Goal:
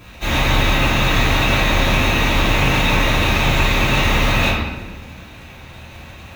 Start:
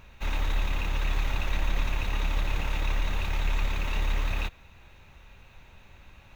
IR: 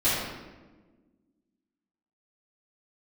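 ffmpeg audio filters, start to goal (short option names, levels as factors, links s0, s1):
-filter_complex "[0:a]highpass=77,highshelf=f=5200:g=5,asplit=2[s0][s1];[s1]acrusher=bits=7:mix=0:aa=0.000001,volume=0.398[s2];[s0][s2]amix=inputs=2:normalize=0[s3];[1:a]atrim=start_sample=2205[s4];[s3][s4]afir=irnorm=-1:irlink=0,volume=1.12"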